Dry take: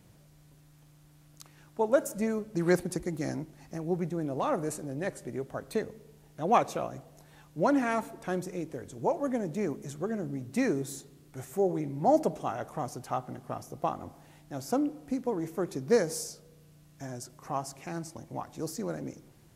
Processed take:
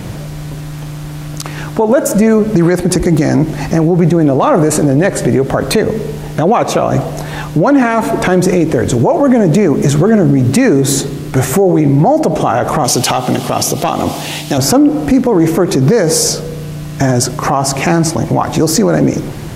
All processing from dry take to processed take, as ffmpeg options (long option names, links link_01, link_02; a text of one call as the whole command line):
ffmpeg -i in.wav -filter_complex "[0:a]asettb=1/sr,asplit=3[link_01][link_02][link_03];[link_01]atrim=end=12.844[link_04];[link_02]atrim=start=12.84:end=14.58,asetpts=PTS-STARTPTS,afade=type=in:duration=0.004:curve=qsin,afade=type=out:start_time=1.736:duration=0.004:curve=qsin,highpass=frequency=180:poles=1,highshelf=frequency=2200:width_type=q:width=1.5:gain=9,aeval=exprs='clip(val(0),-1,0.0447)':channel_layout=same[link_05];[link_03]atrim=start=14.576[link_06];[link_04][link_05]acrossfade=duration=0.004:curve1=hsin:curve2=qsin[link_07];[link_07][link_06]acrossfade=duration=0.004:curve1=qsin:curve2=hsin,highshelf=frequency=5900:gain=-8.5,acompressor=threshold=-35dB:ratio=4,alimiter=level_in=35.5dB:limit=-1dB:release=50:level=0:latency=1,volume=-1dB" out.wav